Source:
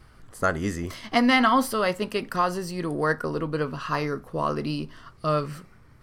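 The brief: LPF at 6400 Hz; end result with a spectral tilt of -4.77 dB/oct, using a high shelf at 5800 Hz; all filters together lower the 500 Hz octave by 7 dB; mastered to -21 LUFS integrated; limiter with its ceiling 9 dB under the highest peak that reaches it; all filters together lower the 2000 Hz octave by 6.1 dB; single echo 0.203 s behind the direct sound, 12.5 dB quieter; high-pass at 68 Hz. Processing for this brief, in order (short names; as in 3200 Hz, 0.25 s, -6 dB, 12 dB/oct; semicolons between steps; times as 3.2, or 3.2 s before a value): HPF 68 Hz; LPF 6400 Hz; bell 500 Hz -8.5 dB; bell 2000 Hz -7.5 dB; high shelf 5800 Hz +5.5 dB; limiter -19.5 dBFS; echo 0.203 s -12.5 dB; gain +10.5 dB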